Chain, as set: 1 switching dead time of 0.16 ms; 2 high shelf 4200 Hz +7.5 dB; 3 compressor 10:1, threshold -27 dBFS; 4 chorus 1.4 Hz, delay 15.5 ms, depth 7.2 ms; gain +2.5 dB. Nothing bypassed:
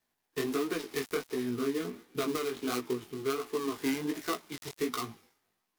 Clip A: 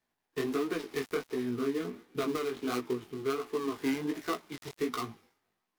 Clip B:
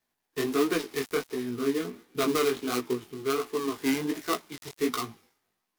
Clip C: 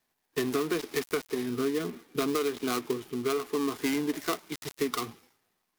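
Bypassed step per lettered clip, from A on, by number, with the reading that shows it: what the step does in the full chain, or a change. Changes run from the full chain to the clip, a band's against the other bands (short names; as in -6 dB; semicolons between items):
2, 8 kHz band -5.5 dB; 3, mean gain reduction 3.0 dB; 4, loudness change +3.0 LU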